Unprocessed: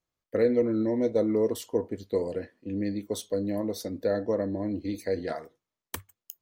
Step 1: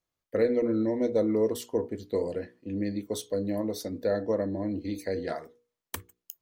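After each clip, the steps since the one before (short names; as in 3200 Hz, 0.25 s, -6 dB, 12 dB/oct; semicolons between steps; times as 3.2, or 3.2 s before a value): notches 60/120/180/240/300/360/420/480 Hz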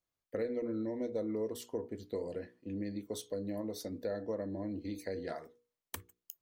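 compressor 2:1, threshold -32 dBFS, peak gain reduction 7.5 dB; gain -5 dB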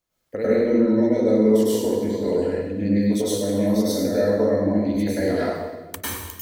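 reverb RT60 1.2 s, pre-delay 94 ms, DRR -9.5 dB; gain +7.5 dB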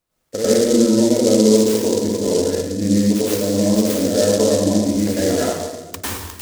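noise-modulated delay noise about 5700 Hz, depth 0.083 ms; gain +4 dB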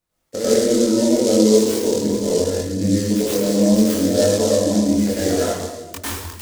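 chorus voices 2, 0.71 Hz, delay 23 ms, depth 1.9 ms; gain +2 dB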